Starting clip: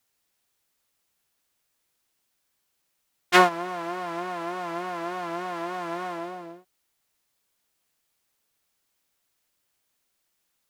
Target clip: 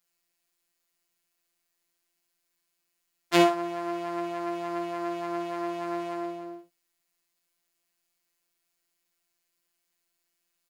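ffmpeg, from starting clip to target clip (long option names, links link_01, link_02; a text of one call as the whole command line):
ffmpeg -i in.wav -af "afftfilt=real='hypot(re,im)*cos(PI*b)':imag='0':win_size=1024:overlap=0.75,aecho=1:1:17|55:0.282|0.473,volume=-1dB" out.wav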